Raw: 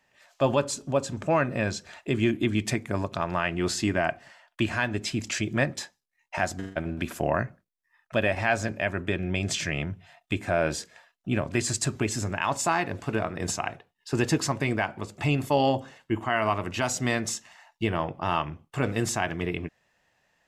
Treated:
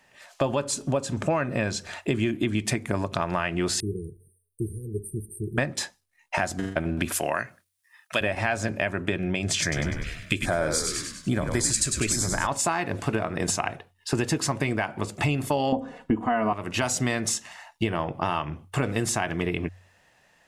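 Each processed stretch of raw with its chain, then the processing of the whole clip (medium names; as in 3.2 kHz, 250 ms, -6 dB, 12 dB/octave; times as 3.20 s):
3.80–5.58 s: brick-wall FIR band-stop 470–8400 Hz + peaking EQ 130 Hz -5.5 dB 2 oct + static phaser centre 1 kHz, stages 6
7.12–8.21 s: high-pass 230 Hz 6 dB/octave + tilt shelf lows -8 dB, about 1.4 kHz
9.62–12.47 s: frequency-shifting echo 99 ms, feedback 48%, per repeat -67 Hz, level -6.5 dB + LFO notch square 1.2 Hz 820–2700 Hz + treble shelf 2.2 kHz +9 dB
15.72–16.53 s: tilt shelf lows +9.5 dB, about 1.5 kHz + comb 4.1 ms, depth 84%
whole clip: peaking EQ 9.5 kHz +8 dB 0.22 oct; compression, threshold -30 dBFS; de-hum 46.11 Hz, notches 2; trim +8 dB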